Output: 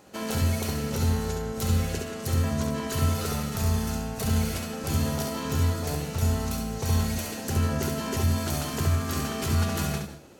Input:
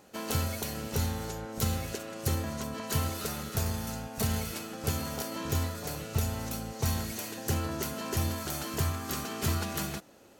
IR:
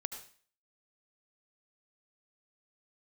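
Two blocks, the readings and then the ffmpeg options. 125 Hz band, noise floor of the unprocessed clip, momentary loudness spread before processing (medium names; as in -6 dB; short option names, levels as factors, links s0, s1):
+7.0 dB, -52 dBFS, 5 LU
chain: -filter_complex "[0:a]equalizer=f=15000:t=o:w=0.37:g=-5.5,alimiter=limit=0.0708:level=0:latency=1:release=31,asplit=2[s0][s1];[1:a]atrim=start_sample=2205,lowshelf=f=350:g=9.5,adelay=68[s2];[s1][s2]afir=irnorm=-1:irlink=0,volume=0.631[s3];[s0][s3]amix=inputs=2:normalize=0,volume=1.41"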